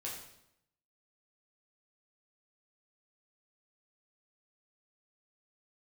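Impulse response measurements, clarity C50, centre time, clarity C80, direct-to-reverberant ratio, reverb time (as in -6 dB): 4.0 dB, 42 ms, 7.0 dB, -4.5 dB, 0.80 s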